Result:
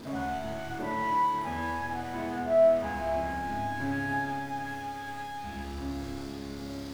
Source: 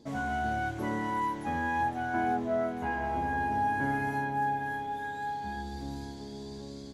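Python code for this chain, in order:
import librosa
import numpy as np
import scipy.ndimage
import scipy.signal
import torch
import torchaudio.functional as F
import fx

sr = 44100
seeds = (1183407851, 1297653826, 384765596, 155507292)

p1 = x + 0.5 * 10.0 ** (-35.0 / 20.0) * np.sign(x)
p2 = fx.high_shelf(p1, sr, hz=4900.0, db=-9.0)
p3 = p2 + fx.room_flutter(p2, sr, wall_m=6.8, rt60_s=0.29, dry=0)
p4 = fx.rev_schroeder(p3, sr, rt60_s=0.63, comb_ms=26, drr_db=0.0)
y = p4 * 10.0 ** (-4.5 / 20.0)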